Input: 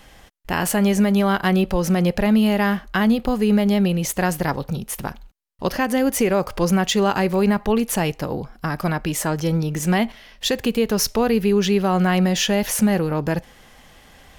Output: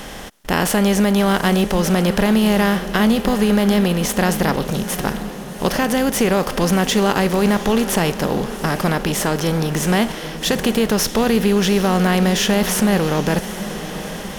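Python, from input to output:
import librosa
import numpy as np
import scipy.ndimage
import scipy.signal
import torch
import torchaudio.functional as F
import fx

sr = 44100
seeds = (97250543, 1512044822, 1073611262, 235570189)

y = fx.bin_compress(x, sr, power=0.6)
y = fx.echo_diffused(y, sr, ms=760, feedback_pct=56, wet_db=-12.5)
y = y * 10.0 ** (-1.0 / 20.0)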